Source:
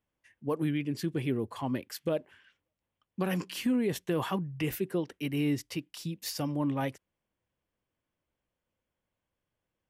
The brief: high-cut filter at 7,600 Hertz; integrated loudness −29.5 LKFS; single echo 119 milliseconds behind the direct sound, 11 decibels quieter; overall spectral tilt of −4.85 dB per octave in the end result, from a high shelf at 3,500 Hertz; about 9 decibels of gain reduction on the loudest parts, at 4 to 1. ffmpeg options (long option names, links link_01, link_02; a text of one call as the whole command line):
ffmpeg -i in.wav -af "lowpass=7600,highshelf=frequency=3500:gain=5.5,acompressor=threshold=-36dB:ratio=4,aecho=1:1:119:0.282,volume=10dB" out.wav